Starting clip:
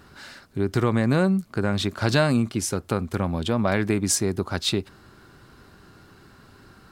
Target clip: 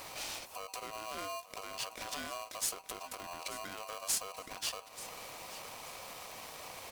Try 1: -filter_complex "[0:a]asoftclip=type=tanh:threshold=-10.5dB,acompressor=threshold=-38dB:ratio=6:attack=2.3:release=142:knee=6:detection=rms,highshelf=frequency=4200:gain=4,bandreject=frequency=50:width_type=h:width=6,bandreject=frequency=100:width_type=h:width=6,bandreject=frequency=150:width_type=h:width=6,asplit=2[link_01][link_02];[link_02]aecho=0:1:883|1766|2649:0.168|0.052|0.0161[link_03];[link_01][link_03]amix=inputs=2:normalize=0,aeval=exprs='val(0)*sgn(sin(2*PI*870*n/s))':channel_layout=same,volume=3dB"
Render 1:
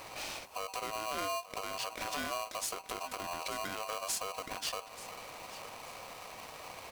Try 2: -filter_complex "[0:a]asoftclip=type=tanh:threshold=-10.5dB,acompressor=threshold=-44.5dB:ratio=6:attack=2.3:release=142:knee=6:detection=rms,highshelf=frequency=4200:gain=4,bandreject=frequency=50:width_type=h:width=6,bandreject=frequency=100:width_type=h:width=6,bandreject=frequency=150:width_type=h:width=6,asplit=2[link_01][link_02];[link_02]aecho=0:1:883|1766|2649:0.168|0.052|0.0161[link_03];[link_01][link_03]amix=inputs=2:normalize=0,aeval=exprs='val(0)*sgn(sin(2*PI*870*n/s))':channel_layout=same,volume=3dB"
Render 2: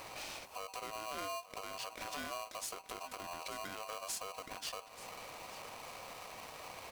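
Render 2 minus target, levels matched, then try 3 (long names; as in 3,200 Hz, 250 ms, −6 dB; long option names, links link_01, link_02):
8,000 Hz band −3.5 dB
-filter_complex "[0:a]asoftclip=type=tanh:threshold=-10.5dB,acompressor=threshold=-44.5dB:ratio=6:attack=2.3:release=142:knee=6:detection=rms,highshelf=frequency=4200:gain=15,bandreject=frequency=50:width_type=h:width=6,bandreject=frequency=100:width_type=h:width=6,bandreject=frequency=150:width_type=h:width=6,asplit=2[link_01][link_02];[link_02]aecho=0:1:883|1766|2649:0.168|0.052|0.0161[link_03];[link_01][link_03]amix=inputs=2:normalize=0,aeval=exprs='val(0)*sgn(sin(2*PI*870*n/s))':channel_layout=same,volume=3dB"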